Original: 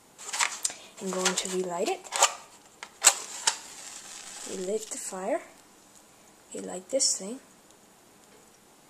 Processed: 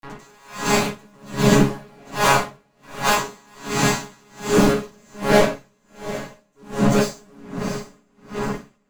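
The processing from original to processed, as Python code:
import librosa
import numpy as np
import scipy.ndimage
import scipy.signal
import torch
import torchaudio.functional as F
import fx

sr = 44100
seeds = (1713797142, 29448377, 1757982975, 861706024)

p1 = fx.vocoder_arp(x, sr, chord='bare fifth', root=49, every_ms=93)
p2 = fx.rider(p1, sr, range_db=5, speed_s=0.5)
p3 = fx.fuzz(p2, sr, gain_db=49.0, gate_db=-49.0)
p4 = fx.transient(p3, sr, attack_db=-6, sustain_db=1)
p5 = p4 + fx.echo_diffused(p4, sr, ms=729, feedback_pct=48, wet_db=-13.0, dry=0)
p6 = fx.room_shoebox(p5, sr, seeds[0], volume_m3=740.0, walls='furnished', distance_m=9.5)
p7 = p6 * 10.0 ** (-36 * (0.5 - 0.5 * np.cos(2.0 * np.pi * 1.3 * np.arange(len(p6)) / sr)) / 20.0)
y = p7 * librosa.db_to_amplitude(-10.0)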